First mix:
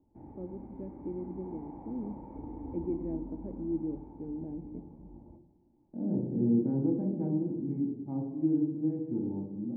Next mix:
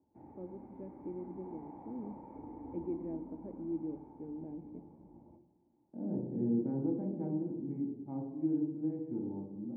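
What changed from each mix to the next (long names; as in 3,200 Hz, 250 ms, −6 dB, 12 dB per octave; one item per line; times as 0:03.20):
background: add high-pass filter 81 Hz
master: add low-shelf EQ 400 Hz −7.5 dB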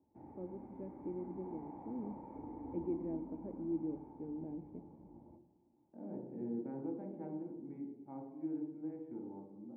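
second voice: add spectral tilt +4.5 dB per octave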